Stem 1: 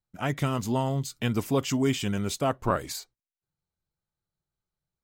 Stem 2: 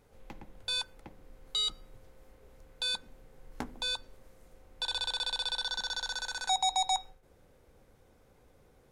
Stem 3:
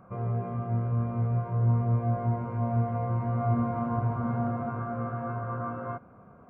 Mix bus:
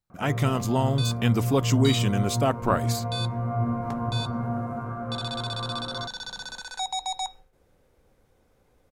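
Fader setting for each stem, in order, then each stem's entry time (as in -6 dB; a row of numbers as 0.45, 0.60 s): +2.5, -1.5, 0.0 dB; 0.00, 0.30, 0.10 s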